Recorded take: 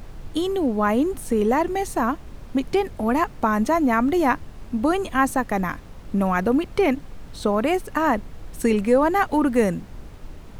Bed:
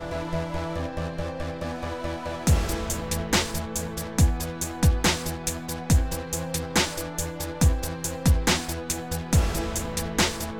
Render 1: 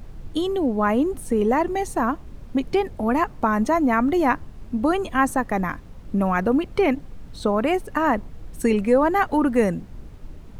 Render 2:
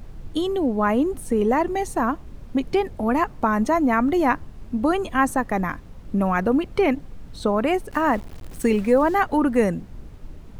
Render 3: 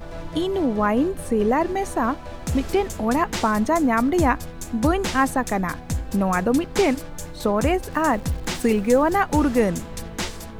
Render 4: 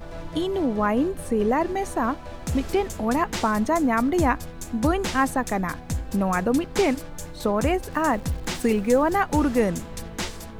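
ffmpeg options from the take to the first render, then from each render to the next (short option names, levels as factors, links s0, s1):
-af "afftdn=nr=6:nf=-41"
-filter_complex "[0:a]asettb=1/sr,asplit=3[s0][s1][s2];[s0]atrim=end=7.914[s3];[s1]atrim=start=7.91:end=9.15,asetpts=PTS-STARTPTS,afade=t=in:d=0.004:c=qsin,afade=t=out:st=1.236:d=0.004:c=qsin,aeval=exprs='val(0)*gte(abs(val(0)),0.0126)':c=same[s4];[s2]atrim=start=9.146[s5];[s3][s4]acrossfade=d=0.004:c1=hsin:c2=qsin[s6];[s6][s5]acrossfade=d=0.004:c1=qsin:c2=hsin"
-filter_complex "[1:a]volume=0.501[s0];[0:a][s0]amix=inputs=2:normalize=0"
-af "volume=0.794"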